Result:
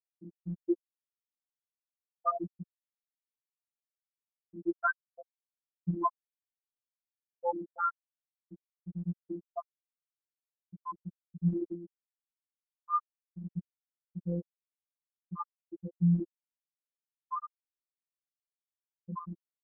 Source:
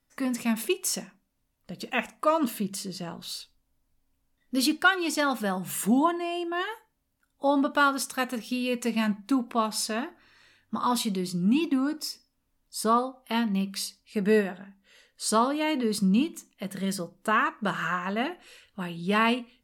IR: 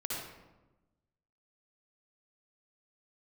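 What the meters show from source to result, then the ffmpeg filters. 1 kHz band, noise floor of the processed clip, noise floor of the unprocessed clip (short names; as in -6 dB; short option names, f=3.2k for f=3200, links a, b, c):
-9.5 dB, under -85 dBFS, -75 dBFS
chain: -af "afftfilt=real='re*gte(hypot(re,im),0.631)':imag='im*gte(hypot(re,im),0.631)':win_size=1024:overlap=0.75,afftfilt=real='hypot(re,im)*cos(PI*b)':imag='0':win_size=1024:overlap=0.75"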